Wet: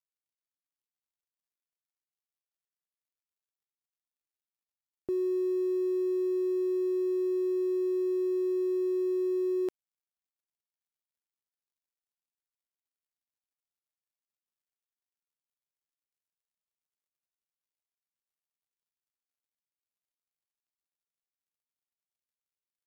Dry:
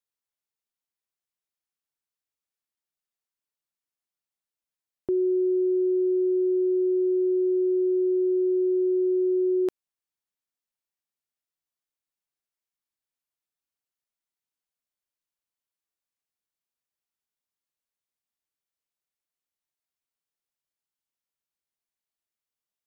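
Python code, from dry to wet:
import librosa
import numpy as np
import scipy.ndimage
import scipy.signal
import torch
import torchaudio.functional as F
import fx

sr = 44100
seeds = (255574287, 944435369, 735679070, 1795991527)

y = fx.law_mismatch(x, sr, coded='mu')
y = y * 10.0 ** (-6.5 / 20.0)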